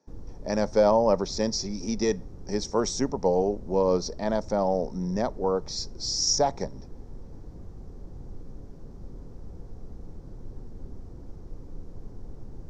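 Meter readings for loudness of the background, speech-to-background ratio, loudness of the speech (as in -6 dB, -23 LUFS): -46.0 LUFS, 19.5 dB, -26.5 LUFS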